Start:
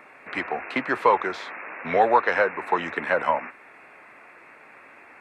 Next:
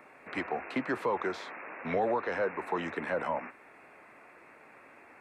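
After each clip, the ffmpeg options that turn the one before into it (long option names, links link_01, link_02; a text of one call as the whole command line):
ffmpeg -i in.wav -filter_complex "[0:a]equalizer=frequency=2200:width_type=o:width=2.7:gain=-6,acrossover=split=340[link_01][link_02];[link_02]alimiter=limit=-21dB:level=0:latency=1:release=48[link_03];[link_01][link_03]amix=inputs=2:normalize=0,volume=-2dB" out.wav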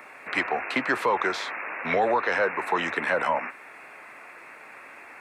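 ffmpeg -i in.wav -af "tiltshelf=frequency=720:gain=-6,volume=7dB" out.wav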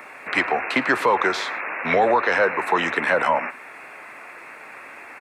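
ffmpeg -i in.wav -filter_complex "[0:a]asplit=2[link_01][link_02];[link_02]adelay=110.8,volume=-20dB,highshelf=frequency=4000:gain=-2.49[link_03];[link_01][link_03]amix=inputs=2:normalize=0,volume=5dB" out.wav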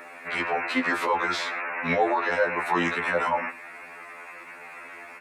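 ffmpeg -i in.wav -af "alimiter=limit=-12.5dB:level=0:latency=1:release=22,afftfilt=real='re*2*eq(mod(b,4),0)':imag='im*2*eq(mod(b,4),0)':win_size=2048:overlap=0.75" out.wav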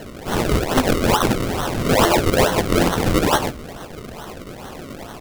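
ffmpeg -i in.wav -af "acrusher=samples=36:mix=1:aa=0.000001:lfo=1:lforange=36:lforate=2.3,aeval=exprs='(mod(6.68*val(0)+1,2)-1)/6.68':channel_layout=same,volume=8.5dB" out.wav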